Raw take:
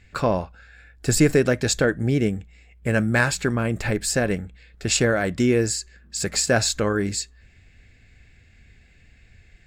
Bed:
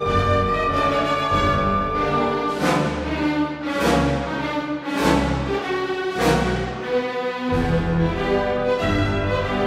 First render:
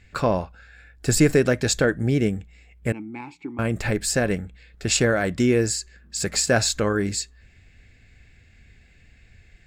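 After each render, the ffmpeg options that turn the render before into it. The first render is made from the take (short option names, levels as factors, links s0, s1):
-filter_complex "[0:a]asettb=1/sr,asplit=3[s0][s1][s2];[s0]atrim=end=2.924[s3];[s1]atrim=start=2.92:end=3.59,asetpts=PTS-STARTPTS,afade=t=in:d=0.004:c=qsin,afade=t=out:st=0.666:d=0.004:c=qsin,asplit=3[s4][s5][s6];[s4]bandpass=f=300:t=q:w=8,volume=1[s7];[s5]bandpass=f=870:t=q:w=8,volume=0.501[s8];[s6]bandpass=f=2240:t=q:w=8,volume=0.355[s9];[s7][s8][s9]amix=inputs=3:normalize=0[s10];[s2]atrim=start=3.586[s11];[s3][s10]acrossfade=d=0.004:c1=hsin:c2=qsin[s12];[s12][s11]acrossfade=d=0.004:c1=qsin:c2=hsin"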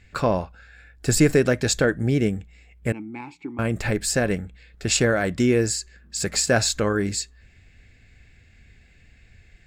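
-af anull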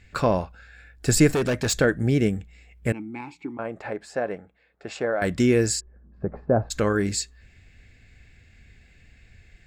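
-filter_complex "[0:a]asettb=1/sr,asplit=3[s0][s1][s2];[s0]atrim=end=1.304[s3];[s1]atrim=start=1.3:end=1.75,asetpts=PTS-STARTPTS,afade=t=in:d=0.004:c=qsin,afade=t=out:st=0.446:d=0.004:c=qsin,asoftclip=type=hard:threshold=0.106[s4];[s2]atrim=start=1.746[s5];[s3][s4]acrossfade=d=0.004:c1=hsin:c2=qsin[s6];[s6][s5]acrossfade=d=0.004:c1=qsin:c2=hsin,asettb=1/sr,asplit=3[s7][s8][s9];[s7]atrim=end=3.574[s10];[s8]atrim=start=3.57:end=5.22,asetpts=PTS-STARTPTS,afade=t=in:d=0.004:c=qsin,afade=t=out:st=1.646:d=0.004:c=qsin,bandpass=f=750:t=q:w=1.3[s11];[s9]atrim=start=5.216[s12];[s10][s11]acrossfade=d=0.004:c1=hsin:c2=qsin[s13];[s13][s12]acrossfade=d=0.004:c1=qsin:c2=hsin,asplit=3[s14][s15][s16];[s14]afade=t=out:st=5.79:d=0.02[s17];[s15]lowpass=f=1000:w=0.5412,lowpass=f=1000:w=1.3066,afade=t=in:st=5.79:d=0.02,afade=t=out:st=6.7:d=0.02[s18];[s16]afade=t=in:st=6.7:d=0.02[s19];[s17][s18][s19]amix=inputs=3:normalize=0"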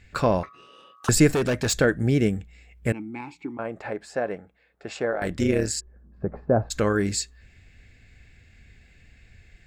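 -filter_complex "[0:a]asettb=1/sr,asplit=3[s0][s1][s2];[s0]atrim=end=0.434[s3];[s1]atrim=start=0.43:end=1.09,asetpts=PTS-STARTPTS,afade=t=in:d=0.004:c=qsin,afade=t=out:st=0.656:d=0.004:c=qsin,aeval=exprs='val(0)*sin(2*PI*1200*n/s)':c=same[s4];[s2]atrim=start=1.086[s5];[s3][s4]acrossfade=d=0.004:c1=hsin:c2=qsin[s6];[s6][s5]acrossfade=d=0.004:c1=qsin:c2=hsin,asplit=3[s7][s8][s9];[s7]afade=t=out:st=5.11:d=0.02[s10];[s8]tremolo=f=150:d=0.75,afade=t=in:st=5.11:d=0.02,afade=t=out:st=5.76:d=0.02[s11];[s9]afade=t=in:st=5.76:d=0.02[s12];[s10][s11][s12]amix=inputs=3:normalize=0"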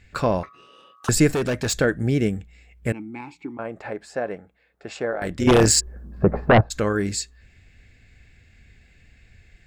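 -filter_complex "[0:a]asettb=1/sr,asplit=3[s0][s1][s2];[s0]atrim=end=5.474[s3];[s1]atrim=start=5.47:end=6.61,asetpts=PTS-STARTPTS,afade=t=in:d=0.004:c=qsin,afade=t=out:st=1.136:d=0.004:c=qsin,aeval=exprs='0.355*sin(PI/2*2.82*val(0)/0.355)':c=same[s4];[s2]atrim=start=6.606[s5];[s3][s4]acrossfade=d=0.004:c1=hsin:c2=qsin[s6];[s6][s5]acrossfade=d=0.004:c1=qsin:c2=hsin"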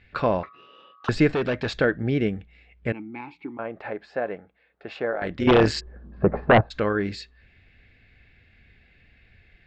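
-af "lowpass=f=3900:w=0.5412,lowpass=f=3900:w=1.3066,lowshelf=f=190:g=-6"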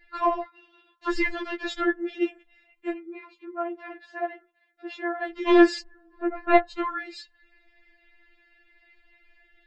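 -af "afftfilt=real='re*4*eq(mod(b,16),0)':imag='im*4*eq(mod(b,16),0)':win_size=2048:overlap=0.75"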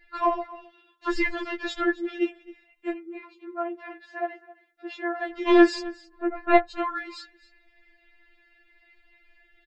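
-af "aecho=1:1:265:0.106"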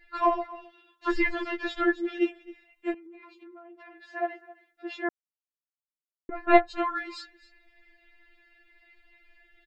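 -filter_complex "[0:a]asettb=1/sr,asplit=3[s0][s1][s2];[s0]atrim=end=1.114[s3];[s1]atrim=start=1.11:end=2.18,asetpts=PTS-STARTPTS,afade=t=in:d=0.004:c=qsin,afade=t=out:st=1.066:d=0.004:c=qsin,acrossover=split=3900[s4][s5];[s5]acompressor=threshold=0.00224:ratio=4:attack=1:release=60[s6];[s4][s6]amix=inputs=2:normalize=0[s7];[s2]atrim=start=2.176[s8];[s3][s7]acrossfade=d=0.004:c1=hsin:c2=qsin[s9];[s9][s8]acrossfade=d=0.004:c1=qsin:c2=hsin,asettb=1/sr,asplit=3[s10][s11][s12];[s10]atrim=end=2.944[s13];[s11]atrim=start=2.94:end=4.08,asetpts=PTS-STARTPTS,afade=t=in:d=0.004:c=qsin,afade=t=out:st=1.136:d=0.004:c=qsin,acompressor=threshold=0.00562:ratio=12:attack=3.2:release=140:knee=1:detection=peak[s14];[s12]atrim=start=4.076[s15];[s13][s14]acrossfade=d=0.004:c1=hsin:c2=qsin[s16];[s16][s15]acrossfade=d=0.004:c1=qsin:c2=hsin,asplit=3[s17][s18][s19];[s17]atrim=end=5.09,asetpts=PTS-STARTPTS,afade=t=out:st=5.086:d=0.004:c=hsin[s20];[s18]atrim=start=5.09:end=6.29,asetpts=PTS-STARTPTS,volume=0[s21];[s19]atrim=start=6.29,asetpts=PTS-STARTPTS,afade=t=in:d=0.004:c=hsin[s22];[s20][s21][s22]concat=n=3:v=0:a=1"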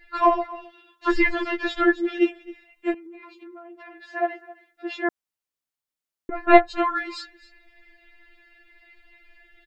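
-af "volume=1.88,alimiter=limit=0.891:level=0:latency=1"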